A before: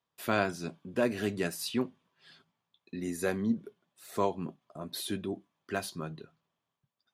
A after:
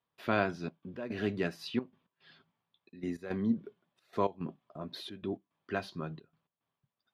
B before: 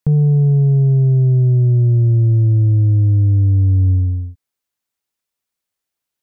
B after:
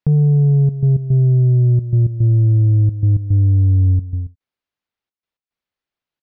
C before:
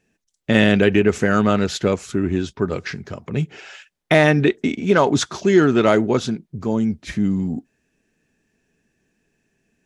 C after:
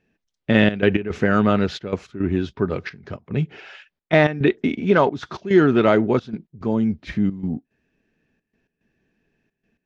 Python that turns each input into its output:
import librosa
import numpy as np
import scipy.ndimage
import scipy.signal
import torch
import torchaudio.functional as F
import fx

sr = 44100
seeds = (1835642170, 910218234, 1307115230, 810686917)

y = fx.high_shelf(x, sr, hz=4700.0, db=11.0)
y = fx.step_gate(y, sr, bpm=109, pattern='xxxxx.x.', floor_db=-12.0, edge_ms=4.5)
y = fx.air_absorb(y, sr, metres=300.0)